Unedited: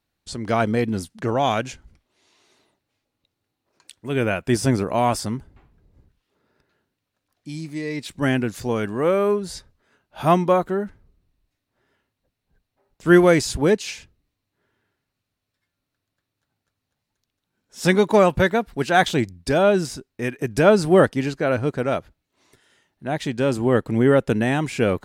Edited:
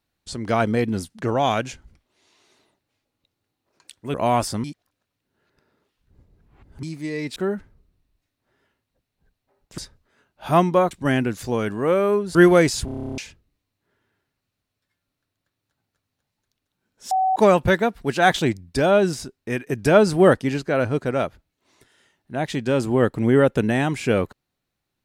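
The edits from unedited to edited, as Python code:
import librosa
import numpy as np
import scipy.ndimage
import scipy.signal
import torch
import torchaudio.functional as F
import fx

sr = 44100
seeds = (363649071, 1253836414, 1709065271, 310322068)

y = fx.edit(x, sr, fx.cut(start_s=4.14, length_s=0.72),
    fx.reverse_span(start_s=5.36, length_s=2.19),
    fx.swap(start_s=8.08, length_s=1.44, other_s=10.65, other_length_s=2.42),
    fx.stutter_over(start_s=13.57, slice_s=0.03, count=11),
    fx.bleep(start_s=17.83, length_s=0.25, hz=756.0, db=-16.5), tone=tone)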